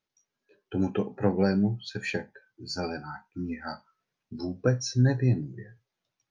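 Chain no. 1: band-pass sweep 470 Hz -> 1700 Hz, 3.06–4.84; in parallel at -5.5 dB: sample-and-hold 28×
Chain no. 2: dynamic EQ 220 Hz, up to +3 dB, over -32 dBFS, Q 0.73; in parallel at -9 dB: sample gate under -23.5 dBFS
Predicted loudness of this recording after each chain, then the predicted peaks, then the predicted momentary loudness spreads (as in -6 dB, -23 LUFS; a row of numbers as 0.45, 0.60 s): -34.5, -24.0 LUFS; -13.5, -6.5 dBFS; 20, 17 LU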